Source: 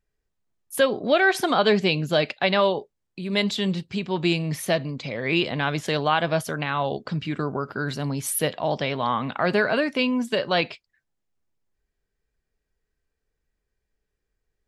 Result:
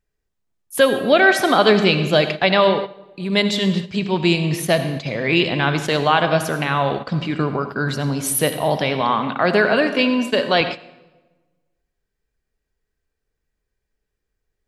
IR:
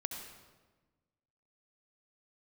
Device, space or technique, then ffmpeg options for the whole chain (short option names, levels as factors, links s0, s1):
keyed gated reverb: -filter_complex "[0:a]asettb=1/sr,asplit=3[s0][s1][s2];[s0]atrim=end=9.014[s3];[s1]atrim=start=9.01:end=10.61,asetpts=PTS-STARTPTS,afade=t=in:d=0.004:c=qsin,afade=t=out:st=1.596:d=0.004:c=qsin,highpass=160[s4];[s2]atrim=start=10.606[s5];[s3][s4]acrossfade=d=0.004:c1=hsin:c2=qsin[s6];[s6][s5]acrossfade=d=0.004:c1=qsin:c2=hsin,asplit=3[s7][s8][s9];[1:a]atrim=start_sample=2205[s10];[s8][s10]afir=irnorm=-1:irlink=0[s11];[s9]apad=whole_len=646976[s12];[s11][s12]sidechaingate=range=0.282:threshold=0.0224:ratio=16:detection=peak,volume=1.26[s13];[s7][s13]amix=inputs=2:normalize=0,volume=0.891"